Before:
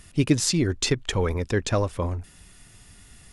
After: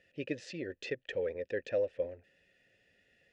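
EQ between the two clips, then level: vowel filter e; distance through air 91 m; tone controls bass +3 dB, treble +4 dB; 0.0 dB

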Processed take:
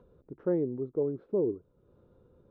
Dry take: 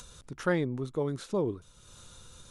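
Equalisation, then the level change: band-pass filter 410 Hz, Q 2; distance through air 210 m; tilt EQ -3 dB/octave; 0.0 dB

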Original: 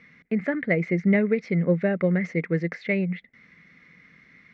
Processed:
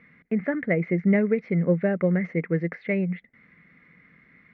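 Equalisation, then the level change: low-pass 2.1 kHz 12 dB/octave; 0.0 dB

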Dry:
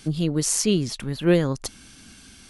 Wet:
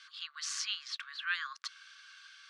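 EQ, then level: rippled Chebyshev high-pass 1.1 kHz, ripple 6 dB; distance through air 130 m; treble shelf 3.6 kHz -8 dB; +4.5 dB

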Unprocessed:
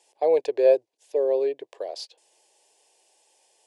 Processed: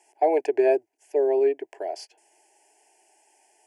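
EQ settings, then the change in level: treble shelf 4.6 kHz -5 dB; static phaser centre 770 Hz, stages 8; +7.0 dB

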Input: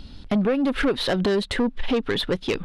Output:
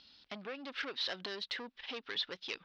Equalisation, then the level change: band-pass filter 5.6 kHz, Q 3.2; distance through air 340 m; +10.5 dB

